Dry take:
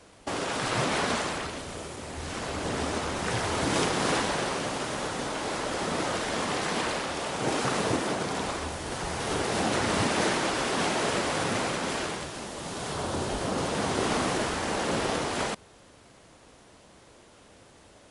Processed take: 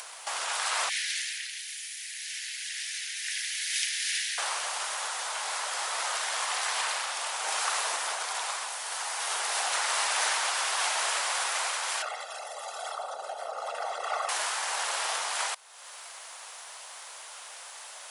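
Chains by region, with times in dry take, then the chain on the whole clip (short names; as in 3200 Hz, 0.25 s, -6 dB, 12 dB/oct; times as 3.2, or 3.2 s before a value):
0.89–4.38 steep high-pass 1700 Hz 72 dB/oct + bell 8000 Hz -4.5 dB 0.35 oct
12.02–14.29 formant sharpening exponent 2 + comb 1.5 ms, depth 87%
whole clip: HPF 780 Hz 24 dB/oct; high shelf 7400 Hz +11 dB; upward compressor, threshold -33 dBFS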